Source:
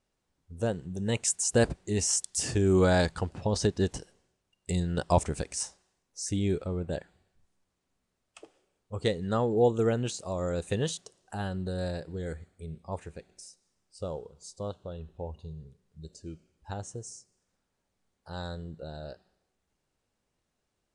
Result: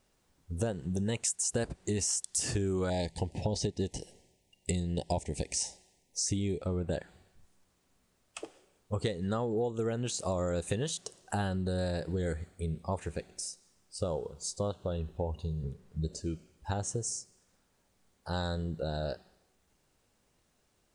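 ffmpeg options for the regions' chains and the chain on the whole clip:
-filter_complex "[0:a]asettb=1/sr,asplit=3[a][b][c];[a]atrim=end=2.904[d];[b]atrim=start=2.9:end=6.62,asetpts=PTS-STARTPTS,afade=t=in:d=0.004:c=qsin,afade=t=out:st=3.716:d=0.004:c=qsin,acrossover=split=7500[e][f];[f]acompressor=threshold=-49dB:ratio=4:attack=1:release=60[g];[e][g]amix=inputs=2:normalize=0,asuperstop=centerf=1300:order=8:qfactor=1.4[h];[c]atrim=start=6.616[i];[d][h]acrossfade=d=0.004:c1=hsin:c2=qsin[j];[j][i]acrossfade=d=0.004:c1=qsin:c2=hsin,asettb=1/sr,asplit=3[k][l][m];[k]atrim=end=15.634[n];[l]atrim=start=15.63:end=16.2,asetpts=PTS-STARTPTS,afade=t=in:d=0.004:c=qsin,afade=t=out:st=0.566:d=0.004:c=qsin,highshelf=f=2.7k:g=-8.5,acontrast=70[o];[m]atrim=start=16.196[p];[n][o]acrossfade=d=0.004:c1=hsin:c2=qsin[q];[q][p]acrossfade=d=0.004:c1=qsin:c2=hsin,highshelf=f=8.1k:g=5,acompressor=threshold=-36dB:ratio=12,volume=7.5dB"

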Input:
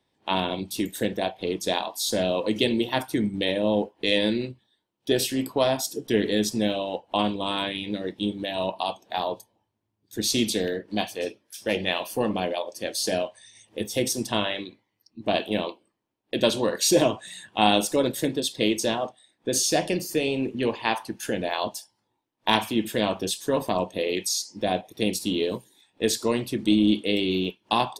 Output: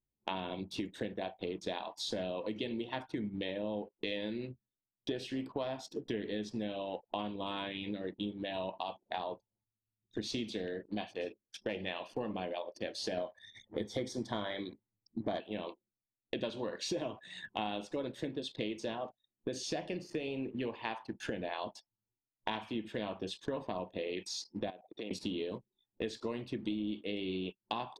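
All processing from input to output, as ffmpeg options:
-filter_complex "[0:a]asettb=1/sr,asplit=3[a][b][c];[a]atrim=end=13.174[d];[b]atrim=start=13.17:end=15.4,asetpts=PTS-STARTPTS,afade=t=in:d=0.004:c=qsin,afade=t=out:st=2.226:d=0.004:c=qsin,acontrast=81,asuperstop=centerf=2700:order=4:qfactor=3.5[e];[c]atrim=start=15.396[f];[d][e]acrossfade=d=0.004:c1=hsin:c2=qsin[g];[g][f]acrossfade=d=0.004:c1=qsin:c2=hsin,asettb=1/sr,asplit=3[h][i][j];[h]atrim=end=24.704[k];[i]atrim=start=24.7:end=25.11,asetpts=PTS-STARTPTS,afade=t=in:d=0.004:c=qsin,afade=t=out:st=0.406:d=0.004:c=qsin,acompressor=threshold=-39dB:ratio=4:attack=3.2:release=140:knee=1:detection=peak,highpass=270,lowpass=7.1k[l];[j]atrim=start=25.106[m];[k][l]acrossfade=d=0.004:c1=hsin:c2=qsin[n];[n][m]acrossfade=d=0.004:c1=qsin:c2=hsin,lowpass=3.4k,anlmdn=0.01,acompressor=threshold=-39dB:ratio=5,volume=2.5dB"

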